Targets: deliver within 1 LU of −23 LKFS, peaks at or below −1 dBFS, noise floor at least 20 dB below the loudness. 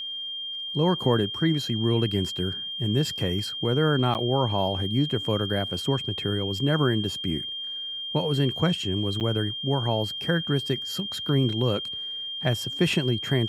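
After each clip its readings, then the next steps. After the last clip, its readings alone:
number of dropouts 2; longest dropout 9.0 ms; interfering tone 3,200 Hz; level of the tone −31 dBFS; integrated loudness −25.5 LKFS; sample peak −8.5 dBFS; target loudness −23.0 LKFS
→ repair the gap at 0:04.14/0:09.20, 9 ms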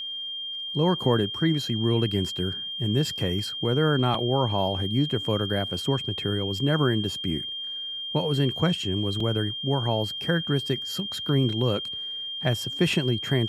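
number of dropouts 0; interfering tone 3,200 Hz; level of the tone −31 dBFS
→ notch filter 3,200 Hz, Q 30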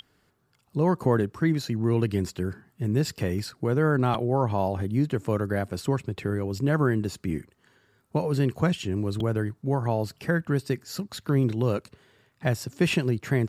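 interfering tone none found; integrated loudness −27.0 LKFS; sample peak −9.5 dBFS; target loudness −23.0 LKFS
→ level +4 dB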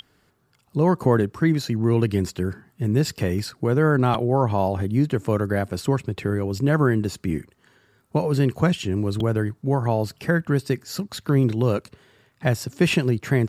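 integrated loudness −23.0 LKFS; sample peak −5.5 dBFS; background noise floor −64 dBFS

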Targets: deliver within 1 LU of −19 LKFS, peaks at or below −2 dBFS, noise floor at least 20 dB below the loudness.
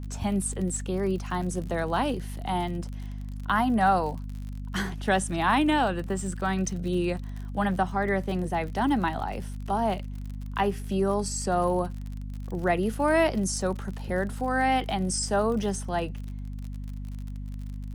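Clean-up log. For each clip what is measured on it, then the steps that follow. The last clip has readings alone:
crackle rate 52 per second; mains hum 50 Hz; hum harmonics up to 250 Hz; level of the hum −33 dBFS; integrated loudness −27.5 LKFS; sample peak −12.0 dBFS; target loudness −19.0 LKFS
→ click removal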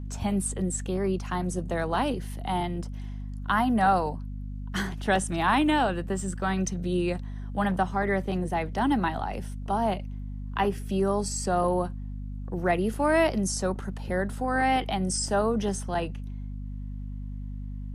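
crackle rate 0.17 per second; mains hum 50 Hz; hum harmonics up to 250 Hz; level of the hum −33 dBFS
→ hum removal 50 Hz, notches 5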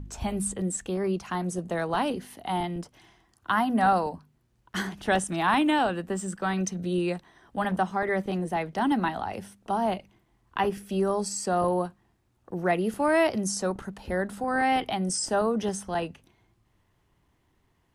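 mains hum none found; integrated loudness −28.0 LKFS; sample peak −12.5 dBFS; target loudness −19.0 LKFS
→ level +9 dB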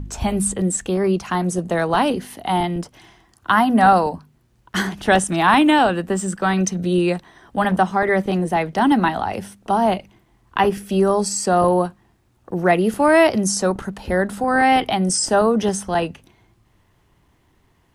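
integrated loudness −19.0 LKFS; sample peak −3.5 dBFS; background noise floor −61 dBFS

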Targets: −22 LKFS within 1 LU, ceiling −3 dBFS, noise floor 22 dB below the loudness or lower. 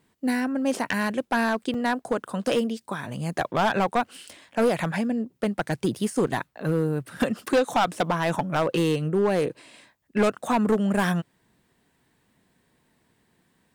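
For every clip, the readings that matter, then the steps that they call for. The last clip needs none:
share of clipped samples 1.3%; peaks flattened at −16.0 dBFS; number of dropouts 1; longest dropout 3.9 ms; integrated loudness −25.5 LKFS; sample peak −16.0 dBFS; target loudness −22.0 LKFS
→ clipped peaks rebuilt −16 dBFS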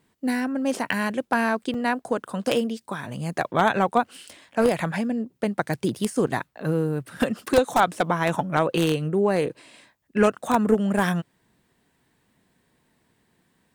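share of clipped samples 0.0%; number of dropouts 1; longest dropout 3.9 ms
→ repair the gap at 0:01.74, 3.9 ms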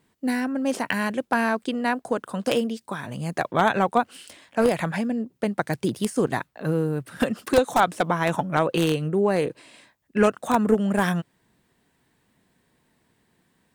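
number of dropouts 0; integrated loudness −24.5 LKFS; sample peak −7.0 dBFS; target loudness −22.0 LKFS
→ level +2.5 dB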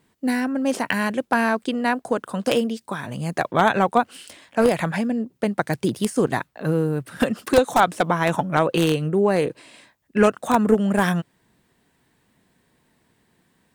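integrated loudness −22.0 LKFS; sample peak −4.5 dBFS; background noise floor −66 dBFS

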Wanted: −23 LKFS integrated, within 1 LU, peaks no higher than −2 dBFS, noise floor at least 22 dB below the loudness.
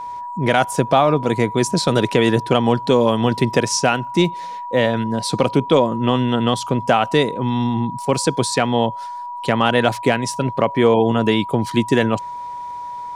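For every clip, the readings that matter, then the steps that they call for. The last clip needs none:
crackle rate 22 per second; interfering tone 970 Hz; level of the tone −27 dBFS; integrated loudness −18.0 LKFS; sample peak −2.0 dBFS; target loudness −23.0 LKFS
→ click removal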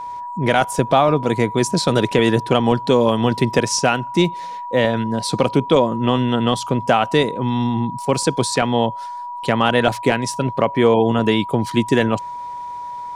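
crackle rate 0.30 per second; interfering tone 970 Hz; level of the tone −27 dBFS
→ notch filter 970 Hz, Q 30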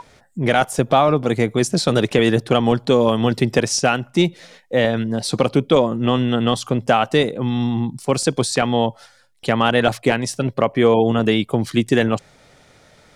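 interfering tone none found; integrated loudness −18.5 LKFS; sample peak −2.5 dBFS; target loudness −23.0 LKFS
→ level −4.5 dB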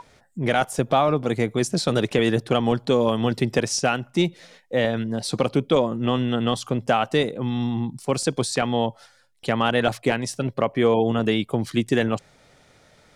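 integrated loudness −23.0 LKFS; sample peak −7.0 dBFS; background noise floor −57 dBFS

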